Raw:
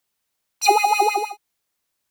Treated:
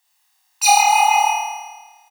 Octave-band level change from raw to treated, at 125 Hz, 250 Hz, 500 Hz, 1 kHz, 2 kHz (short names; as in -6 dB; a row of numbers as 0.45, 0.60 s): n/a, under -40 dB, under -10 dB, +4.5 dB, +5.5 dB